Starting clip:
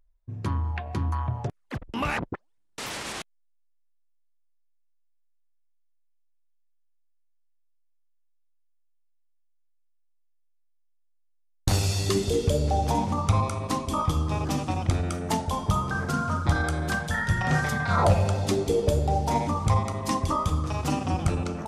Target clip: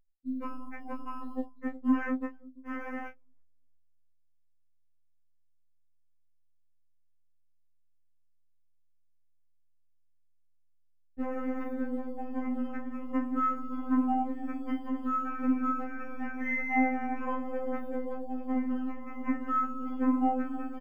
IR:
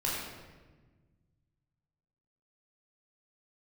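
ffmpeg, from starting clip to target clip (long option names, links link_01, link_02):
-filter_complex "[0:a]aeval=exprs='if(lt(val(0),0),0.447*val(0),val(0))':channel_layout=same,asetrate=45938,aresample=44100,asplit=2[link_01][link_02];[link_02]adelay=341,lowpass=frequency=810:poles=1,volume=-17.5dB,asplit=2[link_03][link_04];[link_04]adelay=341,lowpass=frequency=810:poles=1,volume=0.38,asplit=2[link_05][link_06];[link_06]adelay=341,lowpass=frequency=810:poles=1,volume=0.38[link_07];[link_01][link_03][link_05][link_07]amix=inputs=4:normalize=0,afftdn=noise_reduction=33:noise_floor=-44,acompressor=threshold=-26dB:ratio=12,acrusher=samples=11:mix=1:aa=0.000001,highshelf=frequency=2700:width_type=q:width=3:gain=-11.5,acrossover=split=3500[link_08][link_09];[link_09]acompressor=threshold=-57dB:ratio=4:attack=1:release=60[link_10];[link_08][link_10]amix=inputs=2:normalize=0,equalizer=frequency=220:width=0.32:gain=14.5,asplit=2[link_11][link_12];[link_12]adelay=31,volume=-9dB[link_13];[link_11][link_13]amix=inputs=2:normalize=0,afftfilt=real='re*3.46*eq(mod(b,12),0)':imag='im*3.46*eq(mod(b,12),0)':win_size=2048:overlap=0.75,volume=-7.5dB"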